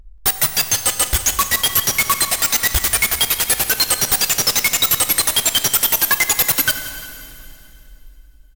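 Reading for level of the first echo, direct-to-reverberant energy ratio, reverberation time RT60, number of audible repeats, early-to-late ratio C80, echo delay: -16.0 dB, 8.0 dB, 2.9 s, 1, 9.5 dB, 180 ms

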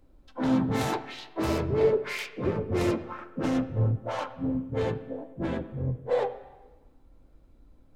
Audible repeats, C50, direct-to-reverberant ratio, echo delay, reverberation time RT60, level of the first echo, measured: no echo, 13.0 dB, 11.0 dB, no echo, 1.2 s, no echo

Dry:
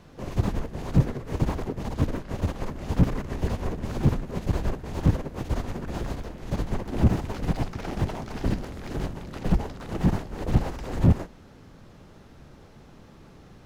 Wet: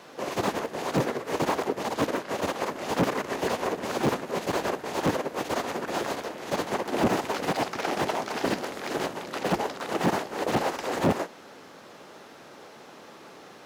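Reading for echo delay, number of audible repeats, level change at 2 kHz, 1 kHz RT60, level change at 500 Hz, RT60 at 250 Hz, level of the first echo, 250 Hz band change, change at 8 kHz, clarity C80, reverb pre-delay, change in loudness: no echo, no echo, +9.0 dB, no reverb, +6.5 dB, no reverb, no echo, -2.0 dB, +9.0 dB, no reverb, no reverb, -0.5 dB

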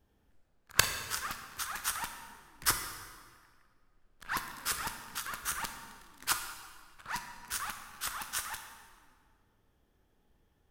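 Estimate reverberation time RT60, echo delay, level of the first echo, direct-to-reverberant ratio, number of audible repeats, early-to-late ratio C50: 1.8 s, no echo, no echo, 6.0 dB, no echo, 7.5 dB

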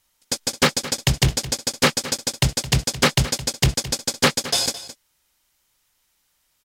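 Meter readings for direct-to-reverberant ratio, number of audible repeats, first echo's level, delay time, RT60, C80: no reverb, 1, -15.0 dB, 216 ms, no reverb, no reverb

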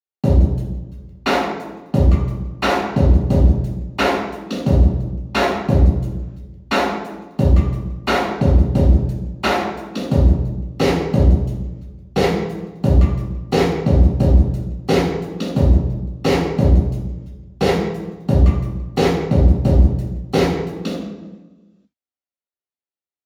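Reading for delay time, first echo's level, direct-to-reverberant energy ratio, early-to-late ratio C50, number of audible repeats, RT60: no echo, no echo, -9.5 dB, 0.5 dB, no echo, 1.2 s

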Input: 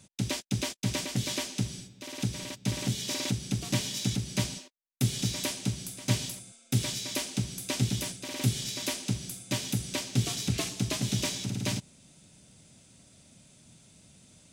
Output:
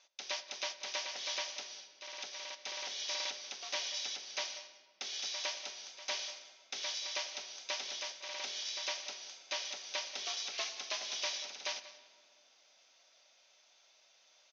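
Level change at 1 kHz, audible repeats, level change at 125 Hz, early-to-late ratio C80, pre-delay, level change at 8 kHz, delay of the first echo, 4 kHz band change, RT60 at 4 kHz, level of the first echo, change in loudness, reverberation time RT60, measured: -2.5 dB, 2, under -40 dB, 12.5 dB, 5 ms, -7.5 dB, 185 ms, -2.5 dB, 1.2 s, -16.5 dB, -7.0 dB, 2.0 s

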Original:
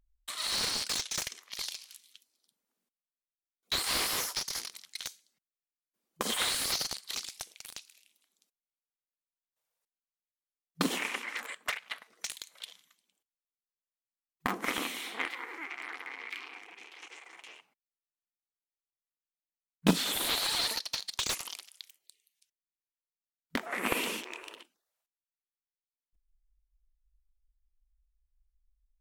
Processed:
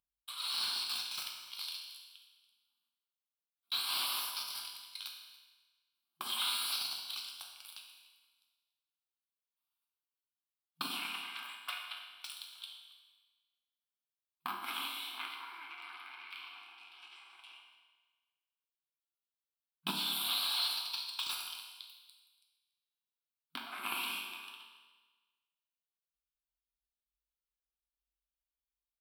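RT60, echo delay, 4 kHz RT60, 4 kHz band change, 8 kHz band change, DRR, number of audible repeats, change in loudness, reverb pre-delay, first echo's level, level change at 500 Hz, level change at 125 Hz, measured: 1.3 s, 284 ms, 1.3 s, -2.0 dB, -9.5 dB, 0.0 dB, 1, -4.5 dB, 8 ms, -19.5 dB, -18.5 dB, -18.5 dB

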